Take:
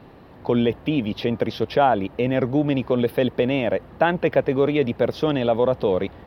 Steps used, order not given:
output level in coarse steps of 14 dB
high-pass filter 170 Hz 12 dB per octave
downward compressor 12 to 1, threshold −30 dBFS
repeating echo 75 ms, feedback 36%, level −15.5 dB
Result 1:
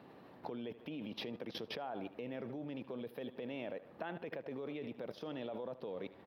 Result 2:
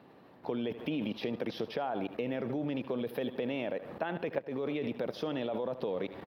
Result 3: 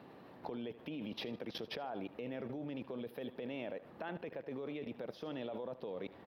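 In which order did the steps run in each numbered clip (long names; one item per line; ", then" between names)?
repeating echo, then downward compressor, then output level in coarse steps, then high-pass filter
repeating echo, then output level in coarse steps, then high-pass filter, then downward compressor
high-pass filter, then downward compressor, then repeating echo, then output level in coarse steps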